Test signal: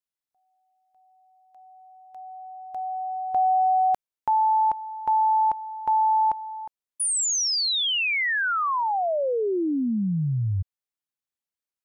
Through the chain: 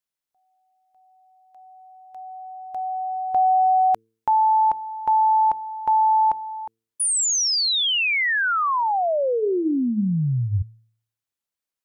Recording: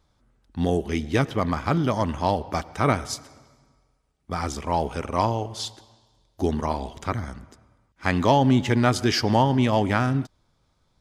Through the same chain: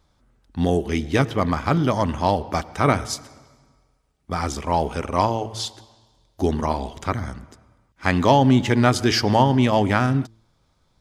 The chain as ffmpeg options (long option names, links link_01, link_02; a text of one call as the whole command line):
ffmpeg -i in.wav -af "bandreject=frequency=112:width_type=h:width=4,bandreject=frequency=224:width_type=h:width=4,bandreject=frequency=336:width_type=h:width=4,bandreject=frequency=448:width_type=h:width=4,volume=3dB" out.wav